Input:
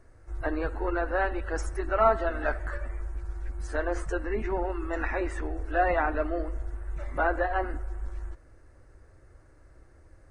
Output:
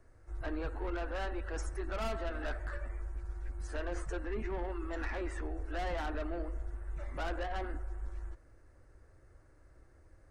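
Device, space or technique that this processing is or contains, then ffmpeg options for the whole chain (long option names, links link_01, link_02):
one-band saturation: -filter_complex "[0:a]acrossover=split=260|3200[link_01][link_02][link_03];[link_02]asoftclip=type=tanh:threshold=-31dB[link_04];[link_01][link_04][link_03]amix=inputs=3:normalize=0,volume=-5.5dB"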